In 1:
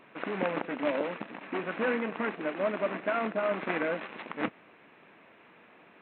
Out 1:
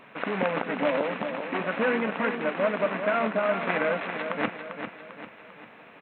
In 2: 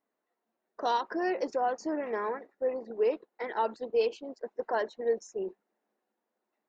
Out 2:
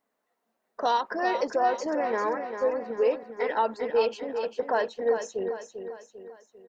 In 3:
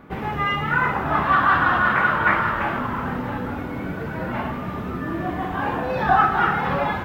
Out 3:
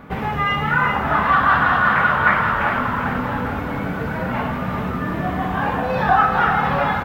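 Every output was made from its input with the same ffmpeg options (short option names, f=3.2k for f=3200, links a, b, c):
-filter_complex "[0:a]equalizer=f=340:t=o:w=0.28:g=-10,asplit=2[a][b];[b]acompressor=threshold=-29dB:ratio=6,volume=0dB[c];[a][c]amix=inputs=2:normalize=0,aecho=1:1:396|792|1188|1584|1980:0.398|0.183|0.0842|0.0388|0.0178"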